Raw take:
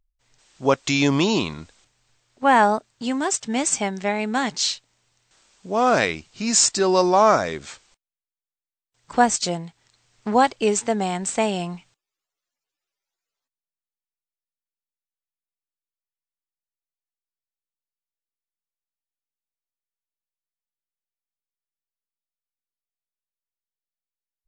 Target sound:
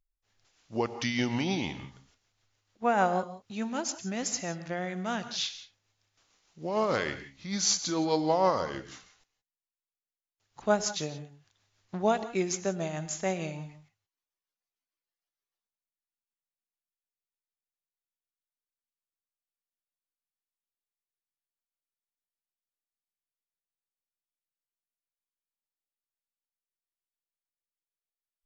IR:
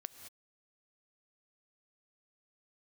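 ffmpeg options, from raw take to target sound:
-filter_complex "[0:a]tremolo=f=7.7:d=0.4,asetrate=37926,aresample=44100[link_01];[1:a]atrim=start_sample=2205,afade=type=out:start_time=0.23:duration=0.01,atrim=end_sample=10584[link_02];[link_01][link_02]afir=irnorm=-1:irlink=0,volume=-3.5dB"

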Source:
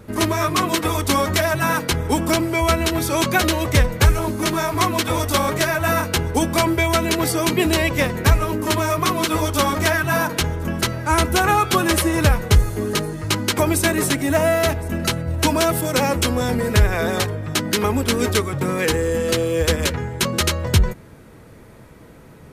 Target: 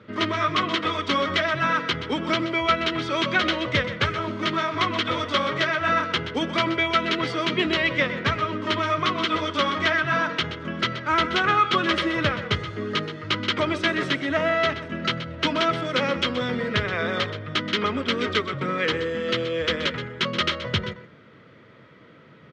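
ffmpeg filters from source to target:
ffmpeg -i in.wav -af "highpass=frequency=110:width=0.5412,highpass=frequency=110:width=1.3066,equalizer=frequency=560:width_type=q:width=4:gain=3,equalizer=frequency=810:width_type=q:width=4:gain=-7,equalizer=frequency=1300:width_type=q:width=4:gain=8,equalizer=frequency=2000:width_type=q:width=4:gain=7,equalizer=frequency=3200:width_type=q:width=4:gain=9,lowpass=frequency=4700:width=0.5412,lowpass=frequency=4700:width=1.3066,aecho=1:1:126:0.251,volume=-6.5dB" out.wav

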